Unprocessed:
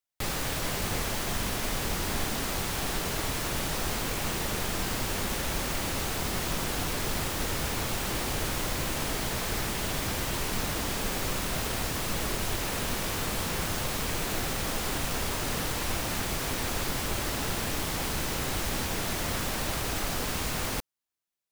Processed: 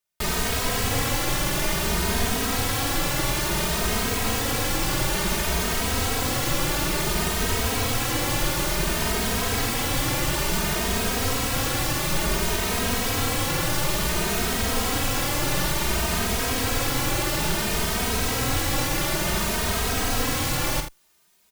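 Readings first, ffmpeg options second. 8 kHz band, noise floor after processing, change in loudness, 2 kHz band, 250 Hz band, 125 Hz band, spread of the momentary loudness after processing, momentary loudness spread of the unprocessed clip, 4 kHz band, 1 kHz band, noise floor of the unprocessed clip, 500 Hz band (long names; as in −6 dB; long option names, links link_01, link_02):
+6.5 dB, −26 dBFS, +6.5 dB, +6.5 dB, +6.5 dB, +6.5 dB, 0 LU, 0 LU, +6.5 dB, +6.5 dB, −33 dBFS, +6.5 dB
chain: -filter_complex "[0:a]aecho=1:1:47|80:0.398|0.299,areverse,acompressor=mode=upward:threshold=-50dB:ratio=2.5,areverse,asplit=2[link_01][link_02];[link_02]adelay=2.9,afreqshift=0.57[link_03];[link_01][link_03]amix=inputs=2:normalize=1,volume=8.5dB"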